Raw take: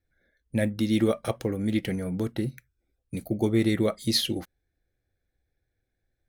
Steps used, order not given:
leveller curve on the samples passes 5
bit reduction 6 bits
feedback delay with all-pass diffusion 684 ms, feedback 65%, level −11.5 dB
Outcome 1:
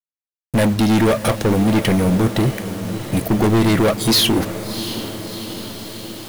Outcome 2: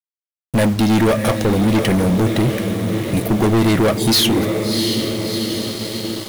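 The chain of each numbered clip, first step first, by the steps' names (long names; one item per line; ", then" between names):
leveller curve on the samples, then feedback delay with all-pass diffusion, then bit reduction
feedback delay with all-pass diffusion, then leveller curve on the samples, then bit reduction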